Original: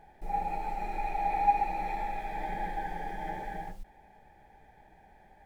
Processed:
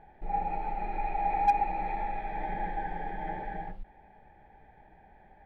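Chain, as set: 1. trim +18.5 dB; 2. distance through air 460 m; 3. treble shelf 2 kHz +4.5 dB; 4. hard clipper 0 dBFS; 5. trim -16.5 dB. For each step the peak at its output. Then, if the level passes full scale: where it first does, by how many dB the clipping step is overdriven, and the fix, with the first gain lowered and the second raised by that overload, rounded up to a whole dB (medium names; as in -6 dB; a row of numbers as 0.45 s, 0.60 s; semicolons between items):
+4.5 dBFS, +3.0 dBFS, +3.5 dBFS, 0.0 dBFS, -16.5 dBFS; step 1, 3.5 dB; step 1 +14.5 dB, step 5 -12.5 dB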